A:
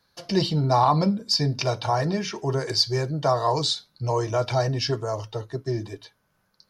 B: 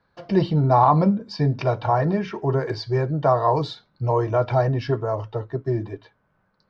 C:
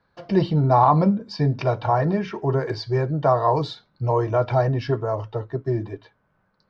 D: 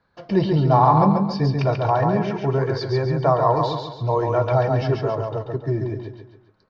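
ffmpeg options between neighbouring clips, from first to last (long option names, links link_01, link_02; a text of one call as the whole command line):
ffmpeg -i in.wav -af "lowpass=1800,volume=3.5dB" out.wav
ffmpeg -i in.wav -af anull out.wav
ffmpeg -i in.wav -af "aecho=1:1:138|276|414|552|690:0.631|0.265|0.111|0.0467|0.0196,aresample=16000,aresample=44100" out.wav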